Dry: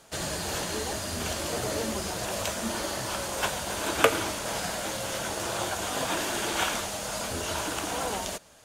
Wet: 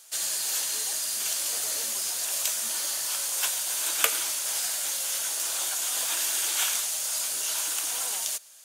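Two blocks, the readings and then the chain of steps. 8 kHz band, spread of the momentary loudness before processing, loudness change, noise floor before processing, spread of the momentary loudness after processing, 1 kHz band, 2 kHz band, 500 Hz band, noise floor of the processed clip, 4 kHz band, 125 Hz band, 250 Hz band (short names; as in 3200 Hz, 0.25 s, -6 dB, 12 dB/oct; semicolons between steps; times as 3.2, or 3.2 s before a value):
+8.5 dB, 4 LU, +3.5 dB, -35 dBFS, 3 LU, -9.0 dB, -3.5 dB, -14.0 dB, -32 dBFS, +2.5 dB, under -25 dB, -20.0 dB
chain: differentiator; gain +8 dB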